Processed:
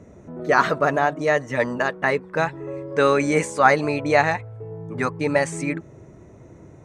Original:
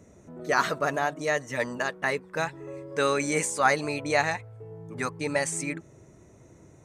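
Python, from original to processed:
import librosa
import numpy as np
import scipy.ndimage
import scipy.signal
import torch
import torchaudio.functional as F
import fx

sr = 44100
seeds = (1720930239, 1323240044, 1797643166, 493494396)

y = fx.lowpass(x, sr, hz=1900.0, slope=6)
y = F.gain(torch.from_numpy(y), 8.0).numpy()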